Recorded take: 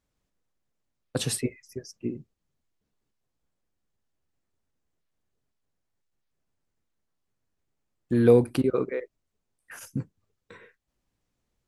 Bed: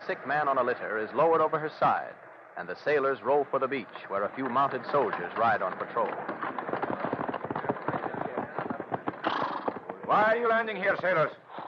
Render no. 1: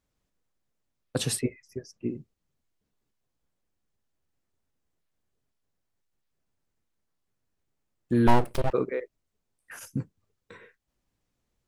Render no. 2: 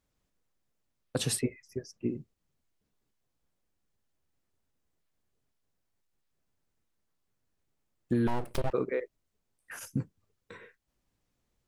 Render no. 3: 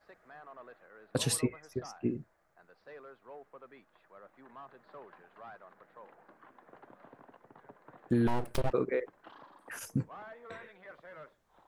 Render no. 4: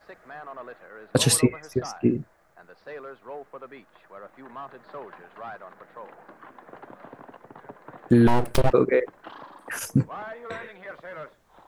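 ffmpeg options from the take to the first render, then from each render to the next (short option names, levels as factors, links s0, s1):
-filter_complex "[0:a]asettb=1/sr,asplit=3[s0][s1][s2];[s0]atrim=end=1.394[s3];[s1]atrim=start=1.39:end=2.06,asetpts=PTS-STARTPTS,afade=t=in:d=0.004:c=qsin,afade=t=out:st=0.666:d=0.004:c=qsin,aemphasis=mode=reproduction:type=cd[s4];[s2]atrim=start=2.056[s5];[s3][s4]acrossfade=d=0.004:c1=hsin:c2=qsin[s6];[s6][s5]acrossfade=d=0.004:c1=qsin:c2=hsin,asettb=1/sr,asplit=3[s7][s8][s9];[s7]atrim=end=8.274[s10];[s8]atrim=start=8.27:end=8.73,asetpts=PTS-STARTPTS,afade=t=in:d=0.004:c=qsin,afade=t=out:st=0.456:d=0.004:c=qsin,aeval=exprs='abs(val(0))':c=same[s11];[s9]atrim=start=8.726[s12];[s10][s11]acrossfade=d=0.004:c1=hsin:c2=qsin[s13];[s13][s12]acrossfade=d=0.004:c1=qsin:c2=hsin"
-af "alimiter=limit=0.2:level=0:latency=1:release=282,acompressor=threshold=0.0631:ratio=6"
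-filter_complex "[1:a]volume=0.0596[s0];[0:a][s0]amix=inputs=2:normalize=0"
-af "volume=3.55"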